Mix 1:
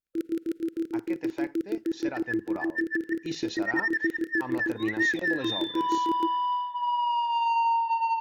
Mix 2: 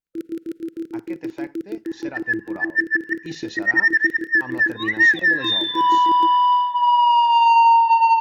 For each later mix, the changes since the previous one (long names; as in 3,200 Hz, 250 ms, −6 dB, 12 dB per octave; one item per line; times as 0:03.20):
speech: send +7.5 dB
second sound +11.5 dB
master: add parametric band 160 Hz +4 dB 1 octave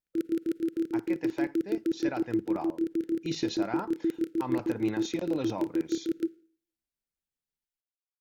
second sound: muted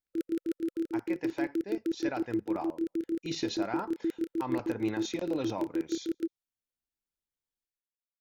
background: send off
master: add parametric band 160 Hz −4 dB 1 octave